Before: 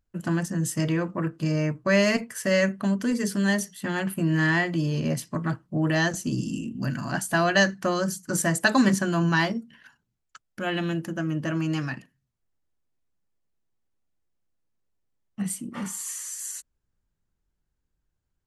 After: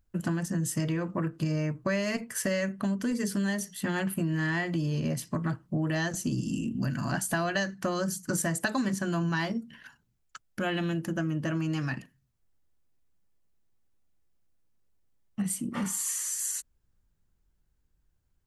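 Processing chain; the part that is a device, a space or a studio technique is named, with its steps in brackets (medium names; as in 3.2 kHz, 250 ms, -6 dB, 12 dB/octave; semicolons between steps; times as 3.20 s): ASMR close-microphone chain (bass shelf 130 Hz +5 dB; compression 5:1, threshold -29 dBFS, peak gain reduction 13.5 dB; treble shelf 11 kHz +4 dB); trim +2 dB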